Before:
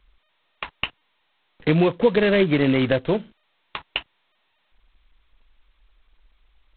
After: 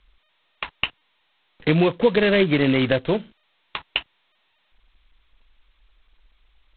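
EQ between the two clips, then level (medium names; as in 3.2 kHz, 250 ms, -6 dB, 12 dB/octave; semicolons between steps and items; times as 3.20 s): distance through air 100 m; treble shelf 3.3 kHz +10.5 dB; 0.0 dB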